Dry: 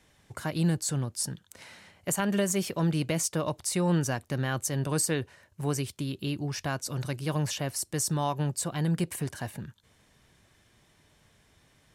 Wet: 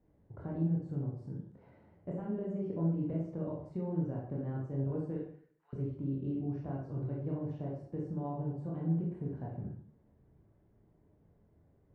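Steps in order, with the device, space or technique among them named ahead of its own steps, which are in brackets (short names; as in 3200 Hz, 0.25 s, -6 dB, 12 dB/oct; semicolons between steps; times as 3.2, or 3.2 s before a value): 5.16–5.73 HPF 1500 Hz 24 dB/oct; television next door (compressor 4:1, threshold -30 dBFS, peak gain reduction 7.5 dB; LPF 490 Hz 12 dB/oct; reverb RT60 0.60 s, pre-delay 20 ms, DRR -4 dB); gain -5 dB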